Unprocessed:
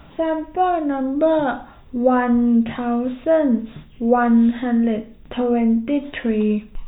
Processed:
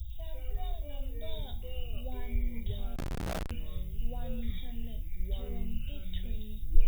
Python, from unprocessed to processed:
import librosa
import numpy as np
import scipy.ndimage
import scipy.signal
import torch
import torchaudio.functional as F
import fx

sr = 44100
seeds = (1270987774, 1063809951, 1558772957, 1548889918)

y = scipy.signal.sosfilt(scipy.signal.cheby2(4, 40, [170.0, 2600.0], 'bandstop', fs=sr, output='sos'), x)
y = fx.echo_pitch(y, sr, ms=100, semitones=-4, count=2, db_per_echo=-3.0)
y = fx.schmitt(y, sr, flips_db=-59.5, at=(2.96, 3.51))
y = F.gain(torch.from_numpy(y), 10.0).numpy()